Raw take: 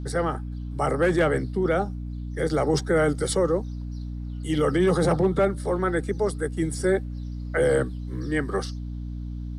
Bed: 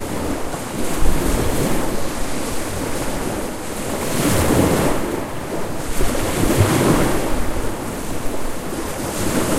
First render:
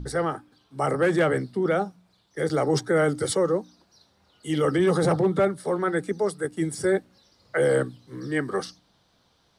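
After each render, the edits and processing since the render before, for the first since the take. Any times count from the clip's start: de-hum 60 Hz, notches 5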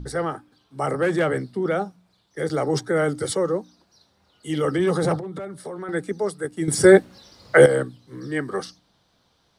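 5.18–5.89 s: compression 10:1, threshold -29 dBFS; 6.68–7.66 s: gain +11 dB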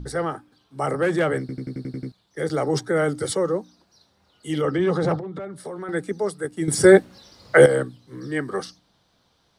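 1.40 s: stutter in place 0.09 s, 8 plays; 4.61–5.56 s: distance through air 100 m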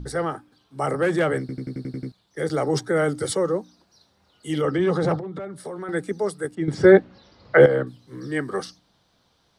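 6.55–7.87 s: distance through air 220 m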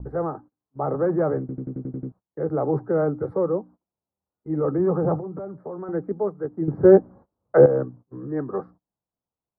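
gate -43 dBFS, range -26 dB; inverse Chebyshev low-pass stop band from 2.9 kHz, stop band 50 dB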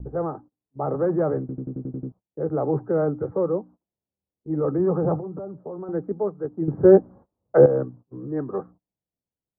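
level-controlled noise filter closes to 550 Hz, open at -16.5 dBFS; low-pass 1.6 kHz 6 dB/octave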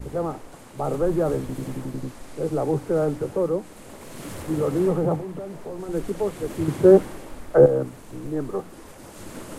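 add bed -19 dB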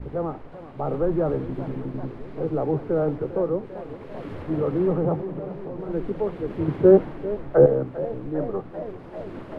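distance through air 370 m; modulated delay 393 ms, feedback 75%, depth 146 cents, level -15 dB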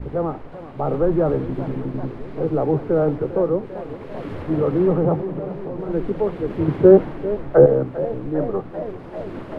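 trim +4.5 dB; peak limiter -1 dBFS, peak gain reduction 2 dB

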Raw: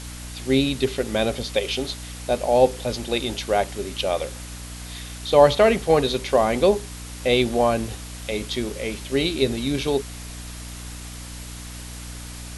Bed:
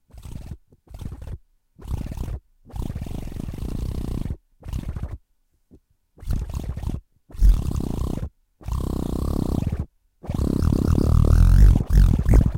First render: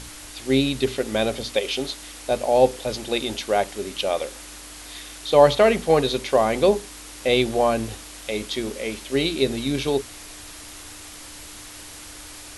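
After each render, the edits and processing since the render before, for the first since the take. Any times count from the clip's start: hum notches 60/120/180/240 Hz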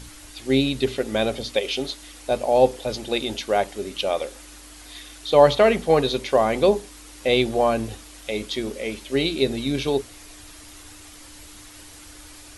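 noise reduction 6 dB, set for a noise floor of -41 dBFS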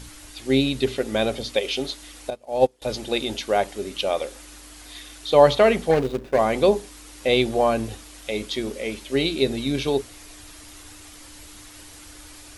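2.30–2.82 s: upward expansion 2.5:1, over -28 dBFS; 5.91–6.39 s: median filter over 41 samples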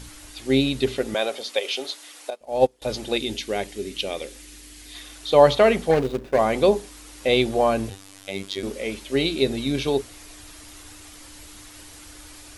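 1.14–2.41 s: high-pass 460 Hz; 3.17–4.94 s: high-order bell 900 Hz -8.5 dB; 7.90–8.63 s: robot voice 97.2 Hz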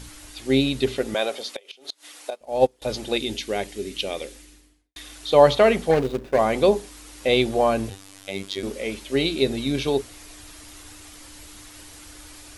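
1.44–2.20 s: inverted gate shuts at -17 dBFS, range -25 dB; 4.21–4.96 s: studio fade out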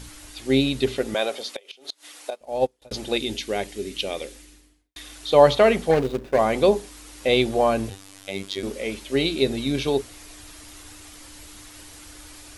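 2.47–2.91 s: fade out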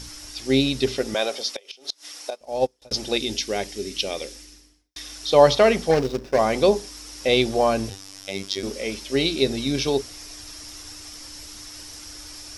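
peaking EQ 5.4 kHz +15 dB 0.36 oct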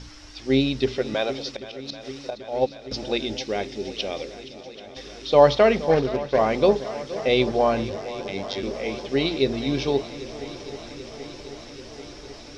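distance through air 160 m; shuffle delay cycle 785 ms, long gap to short 1.5:1, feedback 71%, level -16 dB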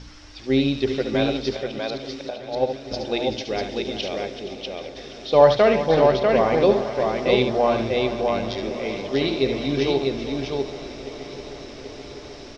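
distance through air 52 m; on a send: multi-tap echo 71/382/645 ms -8/-12.5/-3.5 dB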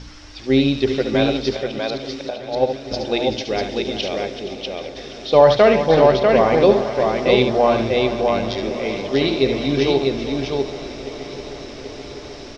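trim +4 dB; peak limiter -1 dBFS, peak gain reduction 3 dB

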